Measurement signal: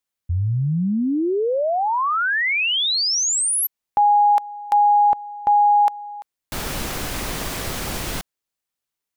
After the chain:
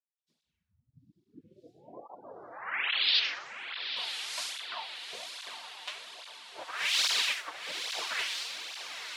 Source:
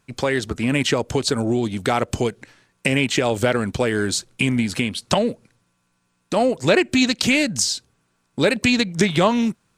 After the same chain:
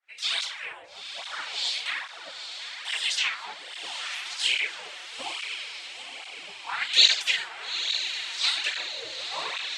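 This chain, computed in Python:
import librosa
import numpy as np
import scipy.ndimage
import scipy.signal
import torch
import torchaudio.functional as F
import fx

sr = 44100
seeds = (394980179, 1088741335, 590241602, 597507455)

p1 = fx.low_shelf(x, sr, hz=110.0, db=7.0)
p2 = fx.rev_double_slope(p1, sr, seeds[0], early_s=0.42, late_s=3.9, knee_db=-19, drr_db=-7.5)
p3 = fx.spec_gate(p2, sr, threshold_db=-20, keep='weak')
p4 = fx.harmonic_tremolo(p3, sr, hz=2.1, depth_pct=50, crossover_hz=2100.0)
p5 = fx.filter_lfo_lowpass(p4, sr, shape='sine', hz=0.74, low_hz=470.0, high_hz=4300.0, q=2.1)
p6 = np.diff(p5, prepend=0.0)
p7 = p6 + fx.echo_diffused(p6, sr, ms=895, feedback_pct=59, wet_db=-8, dry=0)
p8 = fx.flanger_cancel(p7, sr, hz=1.2, depth_ms=5.1)
y = p8 * 10.0 ** (7.5 / 20.0)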